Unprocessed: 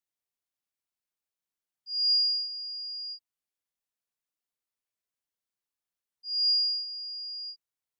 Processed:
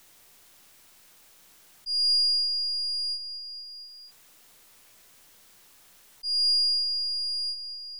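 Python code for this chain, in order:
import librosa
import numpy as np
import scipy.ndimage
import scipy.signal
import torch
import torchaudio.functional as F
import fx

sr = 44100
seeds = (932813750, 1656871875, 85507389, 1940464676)

y = np.where(x < 0.0, 10.0 ** (-3.0 / 20.0) * x, x)
y = fx.echo_feedback(y, sr, ms=232, feedback_pct=51, wet_db=-17.5)
y = fx.env_flatten(y, sr, amount_pct=50)
y = y * 10.0 ** (2.0 / 20.0)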